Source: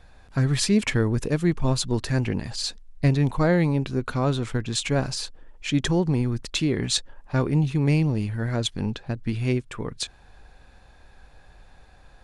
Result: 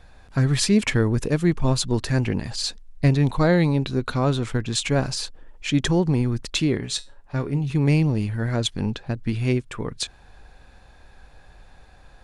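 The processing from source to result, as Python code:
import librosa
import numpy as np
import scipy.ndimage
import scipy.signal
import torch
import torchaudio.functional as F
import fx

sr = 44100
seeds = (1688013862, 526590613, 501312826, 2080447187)

y = fx.peak_eq(x, sr, hz=3900.0, db=9.0, octaves=0.21, at=(3.23, 4.16))
y = fx.comb_fb(y, sr, f0_hz=140.0, decay_s=0.25, harmonics='all', damping=0.0, mix_pct=60, at=(6.77, 7.7))
y = y * 10.0 ** (2.0 / 20.0)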